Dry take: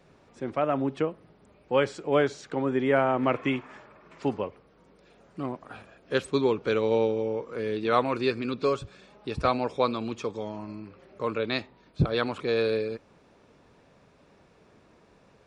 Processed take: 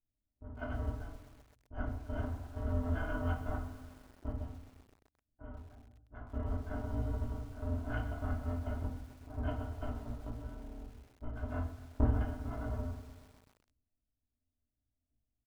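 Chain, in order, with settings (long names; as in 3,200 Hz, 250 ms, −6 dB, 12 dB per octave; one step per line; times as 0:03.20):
samples in bit-reversed order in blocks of 256 samples
low-pass that shuts in the quiet parts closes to 350 Hz, open at −22 dBFS
low-pass filter 1,000 Hz 24 dB per octave
noise gate with hold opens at −60 dBFS
output level in coarse steps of 11 dB
formants moved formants +2 semitones
repeating echo 98 ms, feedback 52%, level −18 dB
rectangular room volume 300 cubic metres, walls furnished, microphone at 2.7 metres
feedback echo at a low word length 129 ms, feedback 80%, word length 9 bits, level −15 dB
level +3 dB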